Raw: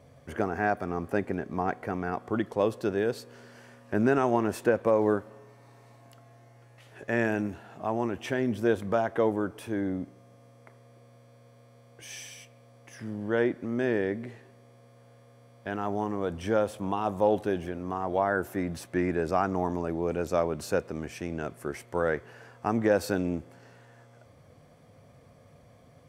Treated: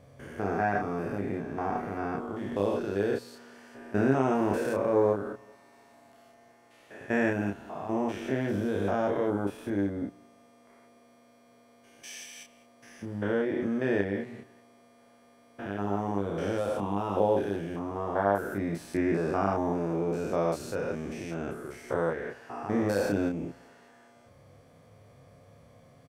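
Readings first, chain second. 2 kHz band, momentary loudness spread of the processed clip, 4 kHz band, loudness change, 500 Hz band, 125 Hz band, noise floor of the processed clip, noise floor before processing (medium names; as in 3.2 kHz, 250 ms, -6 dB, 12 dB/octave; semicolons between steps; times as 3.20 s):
-2.0 dB, 14 LU, -2.0 dB, -1.0 dB, -1.0 dB, +0.5 dB, -59 dBFS, -56 dBFS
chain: spectrogram pixelated in time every 200 ms; doubling 30 ms -3.5 dB; de-hum 60.17 Hz, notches 3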